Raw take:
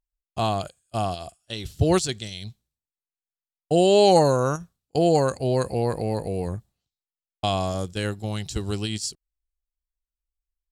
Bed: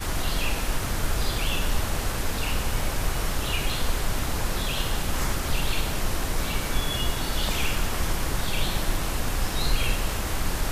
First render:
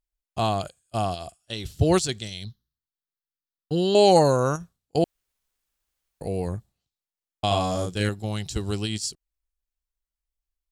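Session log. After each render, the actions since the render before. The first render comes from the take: 2.45–3.95 fixed phaser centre 2400 Hz, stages 6; 5.04–6.21 room tone; 7.47–8.09 doubler 39 ms -2.5 dB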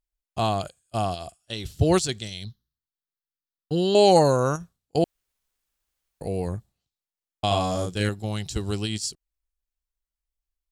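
nothing audible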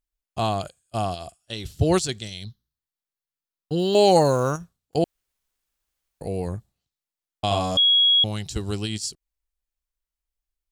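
3.79–4.96 block floating point 7-bit; 7.77–8.24 bleep 3320 Hz -14 dBFS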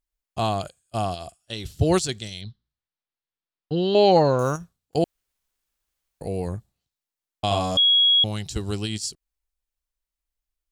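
2.41–4.39 LPF 4500 Hz 24 dB/oct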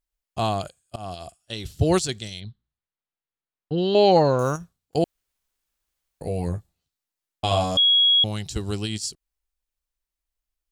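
0.96–1.39 fade in equal-power, from -22.5 dB; 2.4–3.78 air absorption 200 m; 6.25–7.64 doubler 12 ms -5 dB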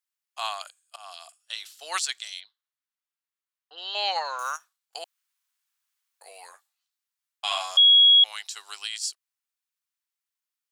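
HPF 1000 Hz 24 dB/oct; dynamic EQ 2000 Hz, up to +7 dB, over -36 dBFS, Q 1.4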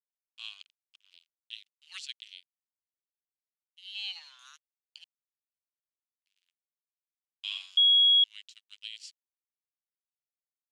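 crossover distortion -38 dBFS; ladder band-pass 3300 Hz, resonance 55%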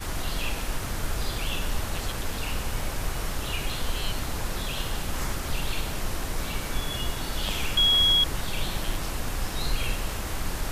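add bed -3.5 dB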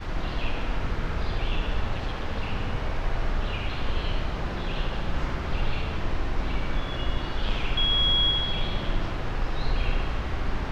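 air absorption 230 m; dark delay 72 ms, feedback 70%, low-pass 3400 Hz, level -4 dB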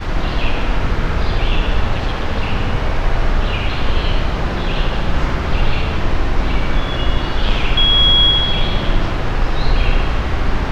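gain +11 dB; limiter -2 dBFS, peak gain reduction 1 dB

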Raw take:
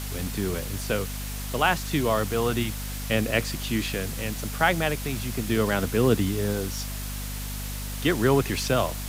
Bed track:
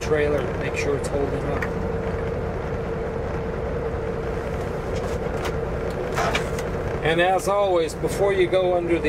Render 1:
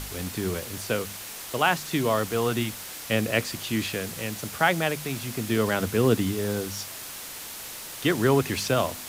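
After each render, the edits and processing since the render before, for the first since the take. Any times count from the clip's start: de-hum 50 Hz, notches 5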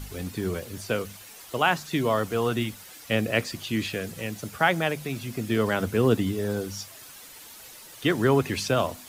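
denoiser 10 dB, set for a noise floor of -39 dBFS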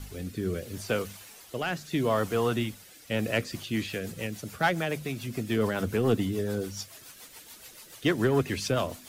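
soft clip -13.5 dBFS, distortion -18 dB; rotary speaker horn 0.75 Hz, later 7 Hz, at 3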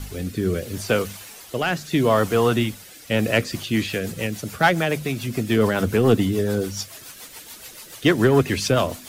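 gain +8 dB

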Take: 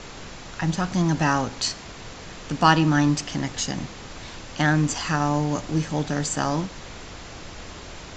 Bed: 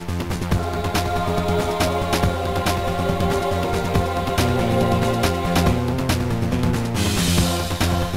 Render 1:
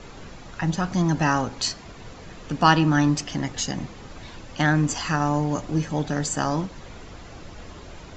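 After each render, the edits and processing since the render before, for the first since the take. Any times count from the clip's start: denoiser 8 dB, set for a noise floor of -40 dBFS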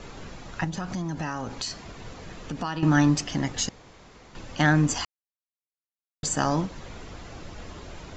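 0.64–2.83 compressor 5:1, threshold -28 dBFS; 3.69–4.35 room tone; 5.05–6.23 mute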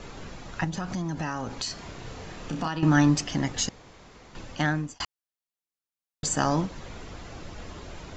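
1.74–2.68 flutter echo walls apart 5.4 m, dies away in 0.36 s; 4.41–5 fade out linear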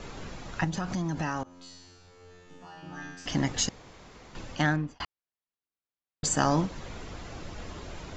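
1.43–3.26 resonator 89 Hz, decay 1.2 s, mix 100%; 4.76–6.24 air absorption 210 m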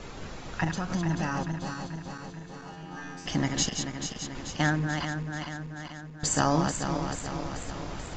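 regenerating reverse delay 0.218 s, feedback 76%, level -6 dB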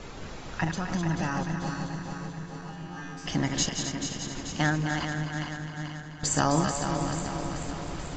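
split-band echo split 360 Hz, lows 0.587 s, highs 0.258 s, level -9 dB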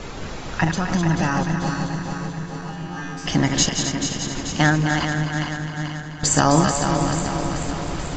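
gain +8.5 dB; limiter -3 dBFS, peak gain reduction 1.5 dB

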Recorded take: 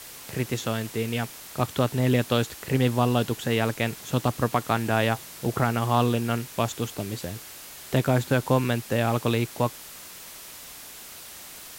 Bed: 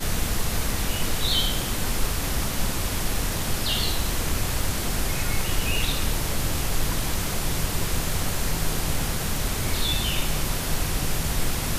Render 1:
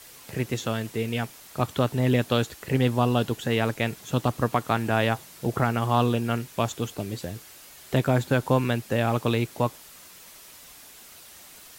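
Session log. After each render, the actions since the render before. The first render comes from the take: denoiser 6 dB, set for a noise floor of -43 dBFS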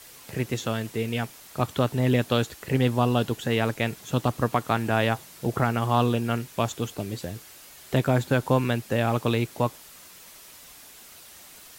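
nothing audible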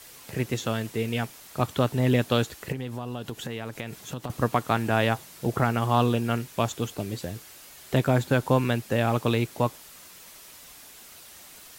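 2.72–4.3 compressor 5:1, threshold -30 dBFS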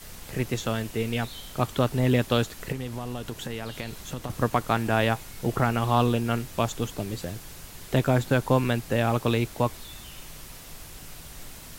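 add bed -19.5 dB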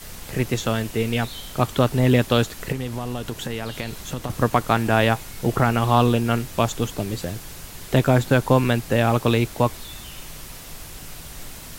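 gain +5 dB; limiter -3 dBFS, peak gain reduction 1 dB

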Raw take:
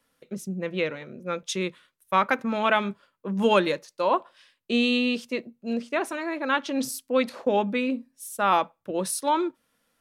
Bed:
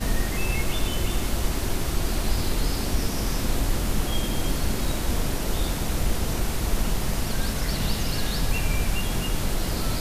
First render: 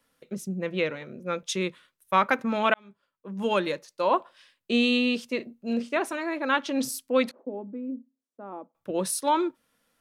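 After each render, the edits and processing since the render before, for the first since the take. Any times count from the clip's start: 2.74–4.16 fade in; 5.36–5.97 doubler 38 ms -10.5 dB; 7.31–8.75 ladder band-pass 320 Hz, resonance 45%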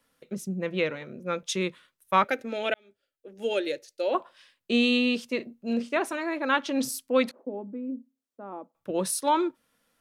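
2.24–4.15 fixed phaser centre 430 Hz, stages 4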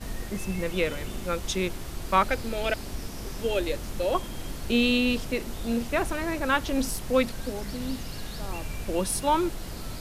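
add bed -10.5 dB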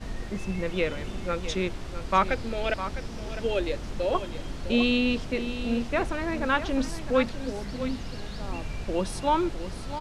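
air absorption 86 m; echo 0.656 s -11.5 dB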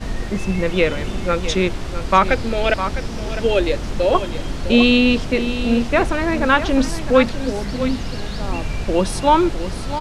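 gain +10 dB; limiter -1 dBFS, peak gain reduction 3 dB

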